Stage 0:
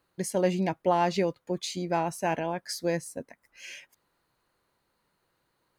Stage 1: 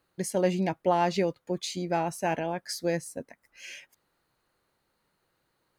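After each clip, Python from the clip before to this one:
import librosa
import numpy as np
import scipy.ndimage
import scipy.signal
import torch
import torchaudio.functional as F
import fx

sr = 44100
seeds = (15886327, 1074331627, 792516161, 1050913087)

y = fx.notch(x, sr, hz=1000.0, q=18.0)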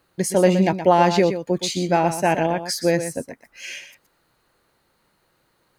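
y = x + 10.0 ** (-10.0 / 20.0) * np.pad(x, (int(121 * sr / 1000.0), 0))[:len(x)]
y = y * librosa.db_to_amplitude(9.0)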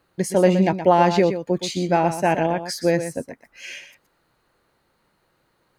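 y = fx.high_shelf(x, sr, hz=3800.0, db=-5.5)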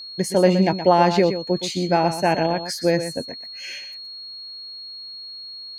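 y = x + 10.0 ** (-34.0 / 20.0) * np.sin(2.0 * np.pi * 4300.0 * np.arange(len(x)) / sr)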